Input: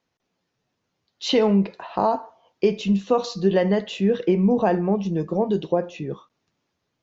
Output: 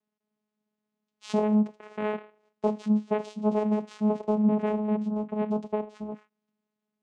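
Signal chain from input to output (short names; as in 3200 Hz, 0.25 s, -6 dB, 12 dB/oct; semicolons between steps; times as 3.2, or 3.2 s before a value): vocoder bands 4, saw 212 Hz; gain -5 dB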